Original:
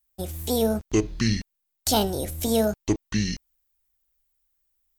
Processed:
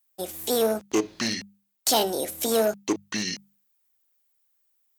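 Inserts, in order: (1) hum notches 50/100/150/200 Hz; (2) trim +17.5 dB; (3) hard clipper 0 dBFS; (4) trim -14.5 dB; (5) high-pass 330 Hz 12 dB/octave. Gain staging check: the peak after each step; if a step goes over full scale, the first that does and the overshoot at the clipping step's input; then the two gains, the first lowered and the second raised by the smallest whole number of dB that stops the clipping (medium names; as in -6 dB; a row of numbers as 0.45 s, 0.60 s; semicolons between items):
-9.5 dBFS, +8.0 dBFS, 0.0 dBFS, -14.5 dBFS, -8.5 dBFS; step 2, 8.0 dB; step 2 +9.5 dB, step 4 -6.5 dB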